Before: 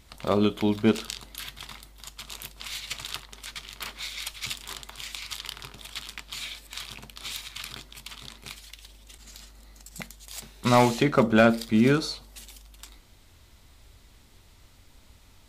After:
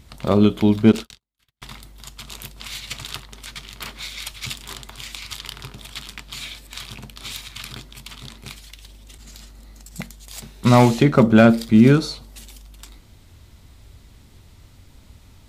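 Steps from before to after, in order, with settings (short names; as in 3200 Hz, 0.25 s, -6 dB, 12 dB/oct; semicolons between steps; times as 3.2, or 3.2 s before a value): bell 120 Hz +8.5 dB 2.9 oct; 0.92–1.62 gate -32 dBFS, range -49 dB; gain +2.5 dB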